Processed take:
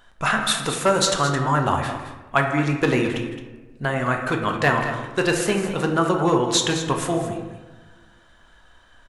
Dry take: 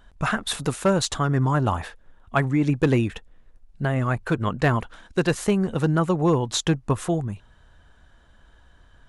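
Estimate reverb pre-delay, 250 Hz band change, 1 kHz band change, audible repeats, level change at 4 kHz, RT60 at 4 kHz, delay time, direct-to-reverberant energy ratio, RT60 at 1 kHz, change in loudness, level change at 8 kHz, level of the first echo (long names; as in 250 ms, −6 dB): 3 ms, −0.5 dB, +5.5 dB, 2, +6.5 dB, 0.55 s, 159 ms, 2.0 dB, 1.1 s, +2.0 dB, +6.0 dB, −17.0 dB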